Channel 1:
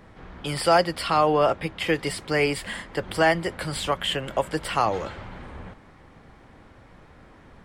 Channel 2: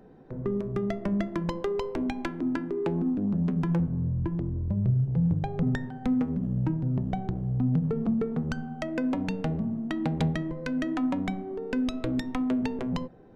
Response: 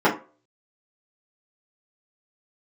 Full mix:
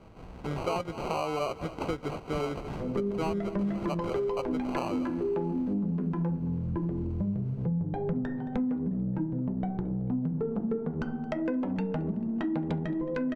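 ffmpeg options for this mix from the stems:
-filter_complex "[0:a]acrusher=samples=25:mix=1:aa=0.000001,volume=0.668,asplit=2[s0][s1];[s1]volume=0.0944[s2];[1:a]adelay=2500,volume=0.944,asplit=3[s3][s4][s5];[s4]volume=0.0944[s6];[s5]volume=0.0944[s7];[2:a]atrim=start_sample=2205[s8];[s6][s8]afir=irnorm=-1:irlink=0[s9];[s2][s7]amix=inputs=2:normalize=0,aecho=0:1:221|442|663|884|1105|1326|1547|1768|1989|2210:1|0.6|0.36|0.216|0.13|0.0778|0.0467|0.028|0.0168|0.0101[s10];[s0][s3][s9][s10]amix=inputs=4:normalize=0,aemphasis=mode=reproduction:type=75fm,acompressor=threshold=0.0398:ratio=5"

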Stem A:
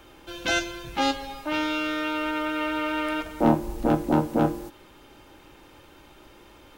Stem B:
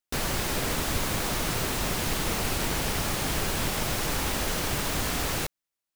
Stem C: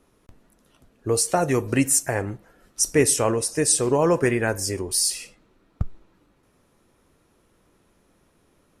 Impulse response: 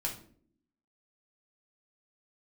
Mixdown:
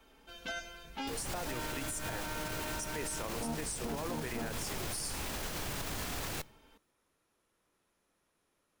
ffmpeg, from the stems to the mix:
-filter_complex "[0:a]aecho=1:1:4.5:0.97,volume=0.2[s0];[1:a]alimiter=level_in=1.19:limit=0.0631:level=0:latency=1,volume=0.841,adelay=950,volume=0.668,asplit=2[s1][s2];[s2]volume=0.112[s3];[2:a]lowshelf=f=470:g=-11.5,volume=0.299[s4];[3:a]atrim=start_sample=2205[s5];[s3][s5]afir=irnorm=-1:irlink=0[s6];[s0][s1][s4][s6]amix=inputs=4:normalize=0,acrossover=split=210[s7][s8];[s8]acompressor=threshold=0.0251:ratio=2[s9];[s7][s9]amix=inputs=2:normalize=0,alimiter=level_in=1.58:limit=0.0631:level=0:latency=1:release=74,volume=0.631"

